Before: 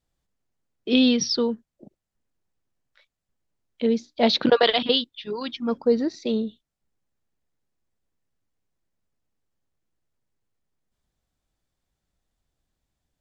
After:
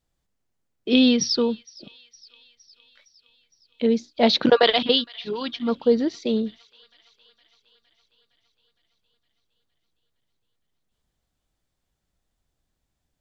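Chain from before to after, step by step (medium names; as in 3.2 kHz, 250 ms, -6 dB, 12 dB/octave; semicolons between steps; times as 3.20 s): feedback echo behind a high-pass 462 ms, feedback 64%, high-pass 1.7 kHz, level -21.5 dB; trim +1.5 dB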